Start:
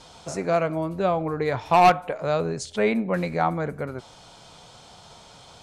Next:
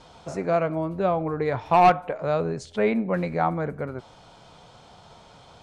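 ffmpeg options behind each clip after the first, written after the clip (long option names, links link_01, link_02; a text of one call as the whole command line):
ffmpeg -i in.wav -af "highshelf=frequency=3900:gain=-12" out.wav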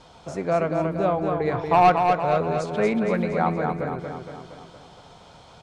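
ffmpeg -i in.wav -af "aecho=1:1:233|466|699|932|1165|1398|1631:0.562|0.298|0.158|0.0837|0.0444|0.0235|0.0125" out.wav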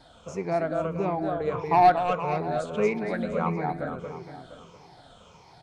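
ffmpeg -i in.wav -af "afftfilt=real='re*pow(10,11/40*sin(2*PI*(0.79*log(max(b,1)*sr/1024/100)/log(2)-(-1.6)*(pts-256)/sr)))':imag='im*pow(10,11/40*sin(2*PI*(0.79*log(max(b,1)*sr/1024/100)/log(2)-(-1.6)*(pts-256)/sr)))':win_size=1024:overlap=0.75,volume=-5.5dB" out.wav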